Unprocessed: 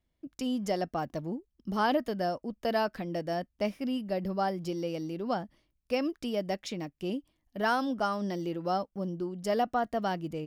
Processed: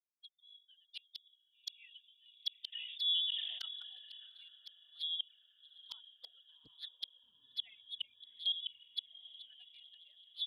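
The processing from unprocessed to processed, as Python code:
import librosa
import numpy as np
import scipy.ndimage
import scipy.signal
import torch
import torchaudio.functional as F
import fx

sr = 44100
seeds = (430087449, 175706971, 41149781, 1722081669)

p1 = fx.bin_expand(x, sr, power=3.0)
p2 = fx.low_shelf(p1, sr, hz=110.0, db=4.0)
p3 = fx.level_steps(p2, sr, step_db=11, at=(7.68, 8.98))
p4 = fx.gate_flip(p3, sr, shuts_db=-39.0, range_db=-39)
p5 = p4 + fx.echo_diffused(p4, sr, ms=785, feedback_pct=55, wet_db=-14.5, dry=0)
p6 = fx.freq_invert(p5, sr, carrier_hz=3600)
p7 = fx.env_flanger(p6, sr, rest_ms=10.3, full_db=-49.0)
p8 = fx.filter_sweep_highpass(p7, sr, from_hz=2500.0, to_hz=79.0, start_s=3.06, end_s=4.33, q=1.1)
p9 = fx.sustainer(p8, sr, db_per_s=30.0, at=(2.72, 4.29), fade=0.02)
y = F.gain(torch.from_numpy(p9), 12.5).numpy()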